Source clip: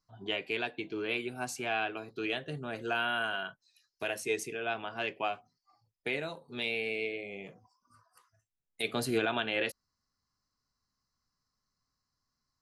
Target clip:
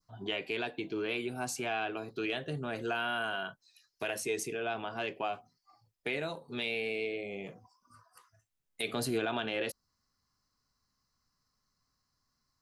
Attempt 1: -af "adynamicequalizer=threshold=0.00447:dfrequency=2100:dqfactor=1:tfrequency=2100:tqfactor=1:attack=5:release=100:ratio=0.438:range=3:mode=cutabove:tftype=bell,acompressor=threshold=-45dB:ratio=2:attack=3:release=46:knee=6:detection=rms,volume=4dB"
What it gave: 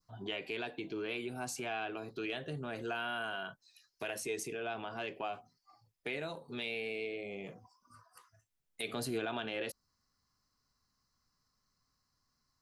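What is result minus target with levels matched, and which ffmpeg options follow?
downward compressor: peak gain reduction +4 dB
-af "adynamicequalizer=threshold=0.00447:dfrequency=2100:dqfactor=1:tfrequency=2100:tqfactor=1:attack=5:release=100:ratio=0.438:range=3:mode=cutabove:tftype=bell,acompressor=threshold=-36.5dB:ratio=2:attack=3:release=46:knee=6:detection=rms,volume=4dB"

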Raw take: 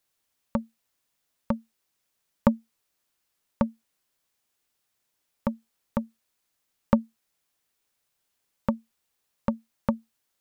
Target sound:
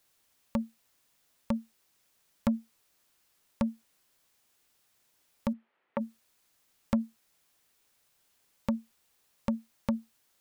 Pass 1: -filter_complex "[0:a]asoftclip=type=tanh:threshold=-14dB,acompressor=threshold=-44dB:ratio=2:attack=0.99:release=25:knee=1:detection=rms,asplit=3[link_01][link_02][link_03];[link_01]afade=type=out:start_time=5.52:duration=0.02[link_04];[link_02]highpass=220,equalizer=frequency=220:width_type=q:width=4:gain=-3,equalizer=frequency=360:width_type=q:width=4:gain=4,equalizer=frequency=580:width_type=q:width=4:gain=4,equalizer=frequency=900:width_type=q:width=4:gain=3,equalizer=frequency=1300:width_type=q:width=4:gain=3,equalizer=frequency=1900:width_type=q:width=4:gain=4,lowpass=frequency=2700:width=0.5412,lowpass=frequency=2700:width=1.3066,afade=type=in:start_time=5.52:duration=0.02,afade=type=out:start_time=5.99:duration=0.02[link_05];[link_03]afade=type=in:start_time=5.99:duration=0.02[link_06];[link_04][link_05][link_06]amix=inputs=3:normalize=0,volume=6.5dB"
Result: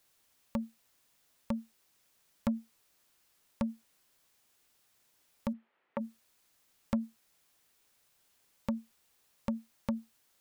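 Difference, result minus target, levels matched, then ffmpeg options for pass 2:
downward compressor: peak gain reduction +4 dB
-filter_complex "[0:a]asoftclip=type=tanh:threshold=-14dB,acompressor=threshold=-36.5dB:ratio=2:attack=0.99:release=25:knee=1:detection=rms,asplit=3[link_01][link_02][link_03];[link_01]afade=type=out:start_time=5.52:duration=0.02[link_04];[link_02]highpass=220,equalizer=frequency=220:width_type=q:width=4:gain=-3,equalizer=frequency=360:width_type=q:width=4:gain=4,equalizer=frequency=580:width_type=q:width=4:gain=4,equalizer=frequency=900:width_type=q:width=4:gain=3,equalizer=frequency=1300:width_type=q:width=4:gain=3,equalizer=frequency=1900:width_type=q:width=4:gain=4,lowpass=frequency=2700:width=0.5412,lowpass=frequency=2700:width=1.3066,afade=type=in:start_time=5.52:duration=0.02,afade=type=out:start_time=5.99:duration=0.02[link_05];[link_03]afade=type=in:start_time=5.99:duration=0.02[link_06];[link_04][link_05][link_06]amix=inputs=3:normalize=0,volume=6.5dB"

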